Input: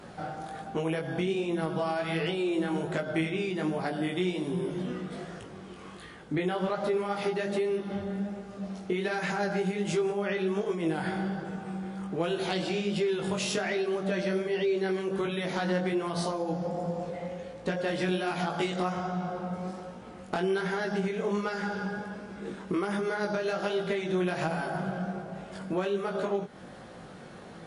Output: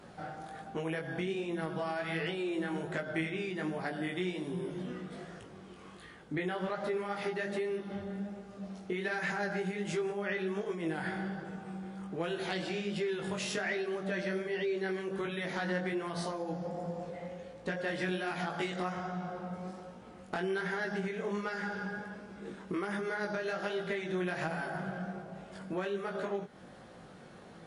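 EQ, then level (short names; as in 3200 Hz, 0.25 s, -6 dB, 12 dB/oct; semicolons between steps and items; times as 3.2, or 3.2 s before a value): dynamic EQ 1800 Hz, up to +7 dB, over -51 dBFS, Q 2.5; -6.0 dB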